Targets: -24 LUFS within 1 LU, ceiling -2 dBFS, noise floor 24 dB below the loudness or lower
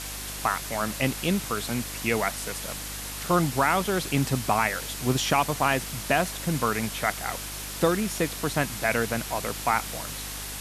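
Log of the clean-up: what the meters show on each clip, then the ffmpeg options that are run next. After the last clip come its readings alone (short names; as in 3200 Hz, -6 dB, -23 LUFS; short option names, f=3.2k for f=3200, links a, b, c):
hum 50 Hz; harmonics up to 300 Hz; hum level -40 dBFS; noise floor -36 dBFS; noise floor target -51 dBFS; loudness -26.5 LUFS; peak -8.5 dBFS; loudness target -24.0 LUFS
-> -af "bandreject=f=50:t=h:w=4,bandreject=f=100:t=h:w=4,bandreject=f=150:t=h:w=4,bandreject=f=200:t=h:w=4,bandreject=f=250:t=h:w=4,bandreject=f=300:t=h:w=4"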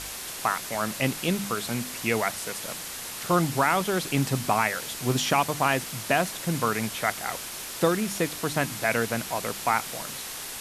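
hum none; noise floor -37 dBFS; noise floor target -51 dBFS
-> -af "afftdn=nr=14:nf=-37"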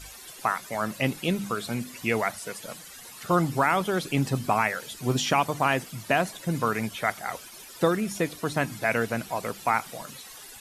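noise floor -45 dBFS; noise floor target -51 dBFS
-> -af "afftdn=nr=6:nf=-45"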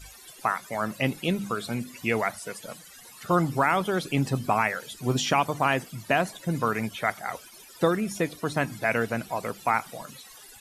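noise floor -49 dBFS; noise floor target -51 dBFS
-> -af "afftdn=nr=6:nf=-49"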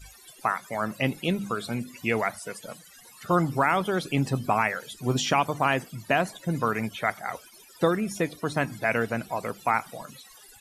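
noise floor -52 dBFS; loudness -27.0 LUFS; peak -9.0 dBFS; loudness target -24.0 LUFS
-> -af "volume=3dB"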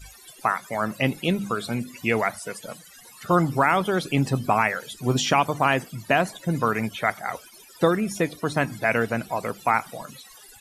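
loudness -24.0 LUFS; peak -6.0 dBFS; noise floor -49 dBFS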